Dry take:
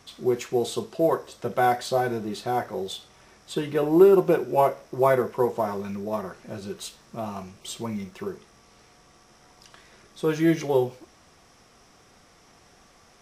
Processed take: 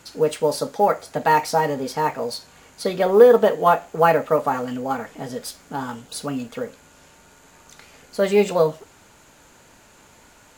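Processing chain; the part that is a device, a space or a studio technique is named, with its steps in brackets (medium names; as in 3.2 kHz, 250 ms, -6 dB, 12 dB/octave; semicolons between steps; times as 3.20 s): nightcore (tape speed +25%); trim +4.5 dB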